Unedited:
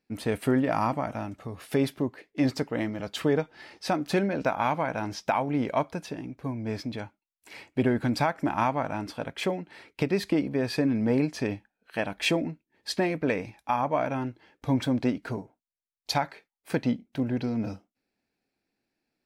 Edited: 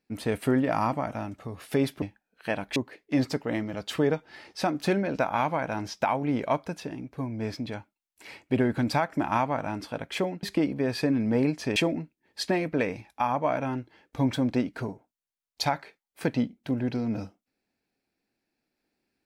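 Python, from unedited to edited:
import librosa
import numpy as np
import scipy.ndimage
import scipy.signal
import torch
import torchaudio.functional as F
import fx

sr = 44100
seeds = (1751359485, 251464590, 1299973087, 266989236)

y = fx.edit(x, sr, fx.cut(start_s=9.69, length_s=0.49),
    fx.move(start_s=11.51, length_s=0.74, to_s=2.02), tone=tone)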